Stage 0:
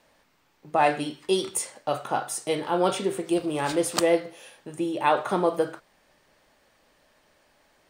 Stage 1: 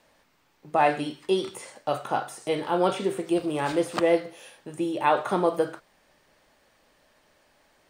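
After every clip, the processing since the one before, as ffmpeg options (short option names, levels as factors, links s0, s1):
-filter_complex "[0:a]acrossover=split=3200[s0][s1];[s1]acompressor=threshold=0.00891:ratio=4:attack=1:release=60[s2];[s0][s2]amix=inputs=2:normalize=0"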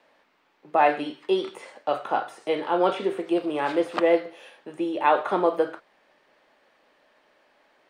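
-filter_complex "[0:a]acrossover=split=230 4000:gain=0.126 1 0.178[s0][s1][s2];[s0][s1][s2]amix=inputs=3:normalize=0,volume=1.26"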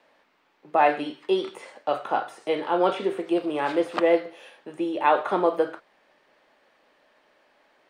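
-af anull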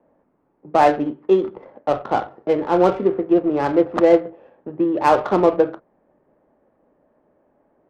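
-af "lowpass=f=1700:p=1,adynamicsmooth=sensitivity=2.5:basefreq=780,equalizer=f=85:w=0.32:g=10,volume=1.68"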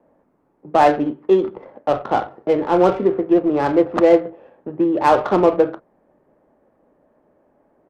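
-filter_complex "[0:a]asplit=2[s0][s1];[s1]volume=8.41,asoftclip=hard,volume=0.119,volume=0.299[s2];[s0][s2]amix=inputs=2:normalize=0,aresample=32000,aresample=44100"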